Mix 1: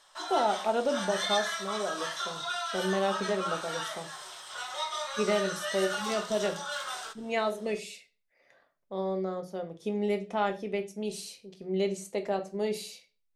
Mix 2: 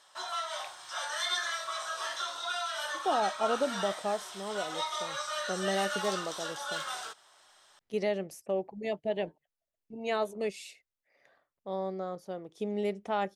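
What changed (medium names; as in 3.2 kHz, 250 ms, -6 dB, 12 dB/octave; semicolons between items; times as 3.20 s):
speech: entry +2.75 s; reverb: off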